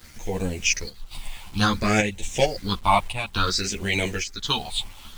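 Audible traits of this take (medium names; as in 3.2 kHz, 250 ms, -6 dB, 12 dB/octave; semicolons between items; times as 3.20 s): phasing stages 6, 0.57 Hz, lowest notch 410–1300 Hz; a quantiser's noise floor 8-bit, dither none; chopped level 0.9 Hz, depth 60%, duty 80%; a shimmering, thickened sound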